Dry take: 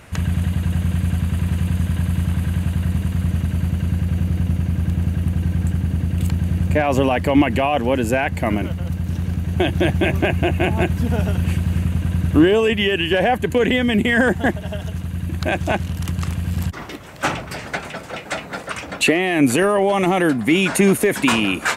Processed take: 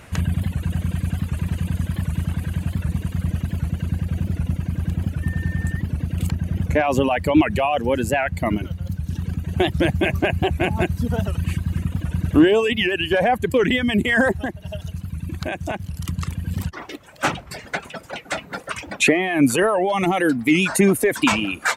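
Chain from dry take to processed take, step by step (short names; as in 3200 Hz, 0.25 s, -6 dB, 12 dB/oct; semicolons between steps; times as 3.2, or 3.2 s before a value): reverb removal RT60 1.9 s; 5.22–5.8 whine 1800 Hz -35 dBFS; 14.37–16.07 compressor 6:1, threshold -23 dBFS, peak gain reduction 8.5 dB; record warp 78 rpm, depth 160 cents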